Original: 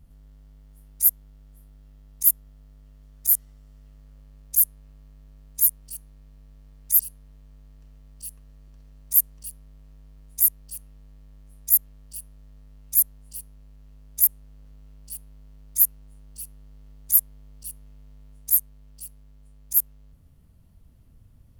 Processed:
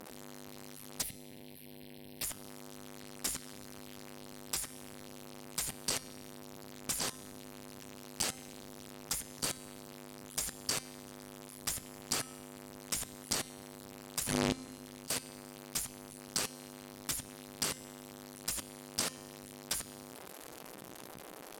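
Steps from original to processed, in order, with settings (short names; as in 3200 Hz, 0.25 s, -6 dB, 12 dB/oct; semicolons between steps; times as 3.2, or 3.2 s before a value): zero-crossing step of -30 dBFS; spectral gate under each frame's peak -15 dB weak; 14.21–15.13 transient shaper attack -5 dB, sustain +10 dB; level quantiser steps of 20 dB; 1.02–2.23 fixed phaser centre 3000 Hz, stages 4; resonator 260 Hz, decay 1.1 s, mix 60%; treble ducked by the level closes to 2900 Hz, closed at -37.5 dBFS; gain +18 dB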